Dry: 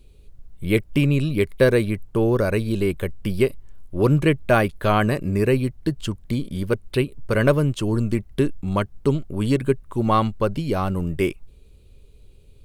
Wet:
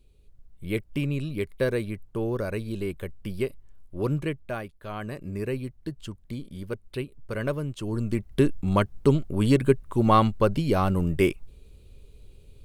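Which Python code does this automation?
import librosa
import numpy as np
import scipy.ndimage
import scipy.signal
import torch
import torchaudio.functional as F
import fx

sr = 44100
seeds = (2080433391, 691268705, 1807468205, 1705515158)

y = fx.gain(x, sr, db=fx.line((4.14, -9.0), (4.78, -19.5), (5.28, -11.0), (7.68, -11.0), (8.46, 0.0)))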